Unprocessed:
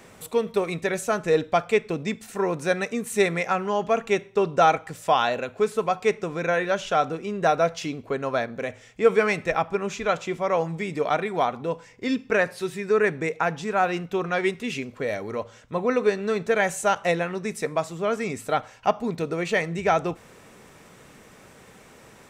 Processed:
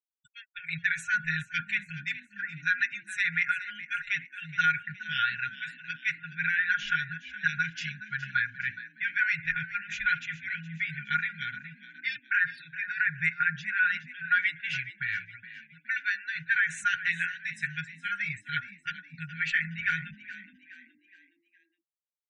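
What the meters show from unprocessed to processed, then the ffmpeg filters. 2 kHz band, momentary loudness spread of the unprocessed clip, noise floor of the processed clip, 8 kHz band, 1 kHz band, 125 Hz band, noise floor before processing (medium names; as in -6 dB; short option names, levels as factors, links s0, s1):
+4.0 dB, 8 LU, -74 dBFS, under -10 dB, -11.0 dB, -8.0 dB, -51 dBFS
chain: -filter_complex "[0:a]afftfilt=real='re*(1-between(b*sr/4096,170,1400))':imag='im*(1-between(b*sr/4096,170,1400))':win_size=4096:overlap=0.75,equalizer=f=1200:w=0.51:g=15,alimiter=limit=0.335:level=0:latency=1:release=119,agate=range=0.0224:threshold=0.0355:ratio=3:detection=peak,highshelf=f=5500:g=-6.5,afftfilt=real='re*gte(hypot(re,im),0.0112)':imag='im*gte(hypot(re,im),0.0112)':win_size=1024:overlap=0.75,aecho=1:1:6.2:0.57,asplit=5[s0][s1][s2][s3][s4];[s1]adelay=418,afreqshift=44,volume=0.178[s5];[s2]adelay=836,afreqshift=88,volume=0.075[s6];[s3]adelay=1254,afreqshift=132,volume=0.0313[s7];[s4]adelay=1672,afreqshift=176,volume=0.0132[s8];[s0][s5][s6][s7][s8]amix=inputs=5:normalize=0,volume=0.447"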